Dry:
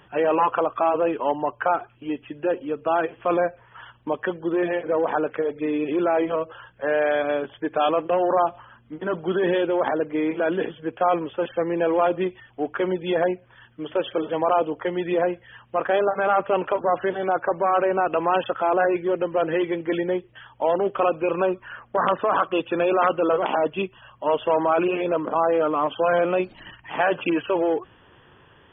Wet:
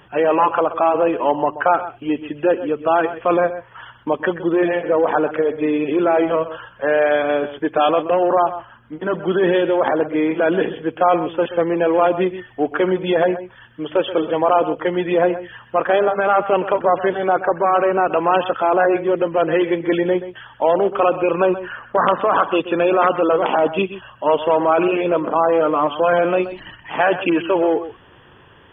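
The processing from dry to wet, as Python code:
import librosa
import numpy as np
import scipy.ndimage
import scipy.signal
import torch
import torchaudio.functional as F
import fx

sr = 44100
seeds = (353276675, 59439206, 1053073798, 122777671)

p1 = fx.rider(x, sr, range_db=4, speed_s=0.5)
p2 = x + F.gain(torch.from_numpy(p1), -1.5).numpy()
y = p2 + 10.0 ** (-13.0 / 20.0) * np.pad(p2, (int(128 * sr / 1000.0), 0))[:len(p2)]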